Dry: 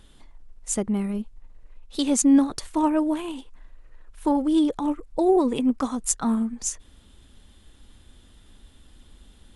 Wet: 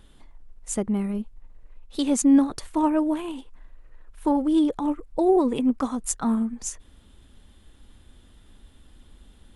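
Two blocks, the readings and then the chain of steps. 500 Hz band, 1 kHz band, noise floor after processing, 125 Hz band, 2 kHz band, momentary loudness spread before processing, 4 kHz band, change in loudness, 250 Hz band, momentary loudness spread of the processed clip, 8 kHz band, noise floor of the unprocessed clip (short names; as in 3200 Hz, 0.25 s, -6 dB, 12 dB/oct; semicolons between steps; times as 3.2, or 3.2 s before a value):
0.0 dB, -0.5 dB, -54 dBFS, n/a, -1.0 dB, 14 LU, -3.5 dB, -0.5 dB, 0.0 dB, 14 LU, -4.0 dB, -54 dBFS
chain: bell 5800 Hz -4.5 dB 2 oct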